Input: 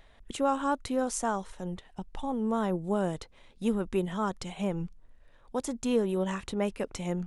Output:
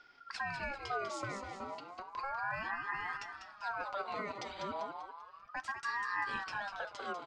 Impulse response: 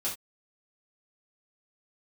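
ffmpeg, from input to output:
-filter_complex "[0:a]lowpass=f=5.4k:w=0.5412,lowpass=f=5.4k:w=1.3066,equalizer=f=3.8k:t=o:w=0.69:g=6,bandreject=f=60:t=h:w=6,bandreject=f=120:t=h:w=6,bandreject=f=180:t=h:w=6,aecho=1:1:7.2:0.34,alimiter=limit=-24dB:level=0:latency=1:release=133,asuperstop=centerf=850:order=8:qfactor=3.3,aecho=1:1:196|392|588|784|980:0.447|0.183|0.0751|0.0308|0.0126,asplit=2[a][b];[1:a]atrim=start_sample=2205[c];[b][c]afir=irnorm=-1:irlink=0,volume=-19dB[d];[a][d]amix=inputs=2:normalize=0,aeval=exprs='val(0)*sin(2*PI*1100*n/s+1100*0.3/0.33*sin(2*PI*0.33*n/s))':c=same,volume=-4dB"

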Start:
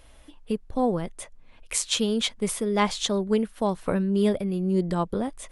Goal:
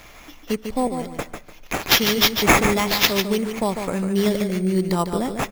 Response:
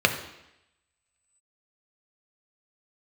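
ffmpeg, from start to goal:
-filter_complex "[0:a]alimiter=limit=-16dB:level=0:latency=1:release=240,asettb=1/sr,asplit=3[a][b][c];[a]atrim=end=0.874[d];[b]atrim=start=0.87:end=1.88,asetpts=PTS-STARTPTS,afade=t=in:d=0.004:c=qsin,afade=t=out:st=1.006:d=0.004:c=qsin,acrossover=split=700|4200[e][f][g];[e]acompressor=threshold=-33dB:ratio=4[h];[f]acompressor=threshold=-50dB:ratio=4[i];[g]acompressor=threshold=-45dB:ratio=4[j];[h][i][j]amix=inputs=3:normalize=0[k];[c]atrim=start=1.876[l];[d][k]acrossfade=d=0.004:c1=hsin:c2=qsin[m];[m][l]acrossfade=d=0.004:c1=qsin:c2=hsin,crystalizer=i=5:c=0,aecho=1:1:148|296|444:0.447|0.112|0.0279,acrusher=samples=5:mix=1:aa=0.000001,asplit=2[n][o];[1:a]atrim=start_sample=2205,asetrate=26019,aresample=44100[p];[o][p]afir=irnorm=-1:irlink=0,volume=-34dB[q];[n][q]amix=inputs=2:normalize=0,volume=2dB"

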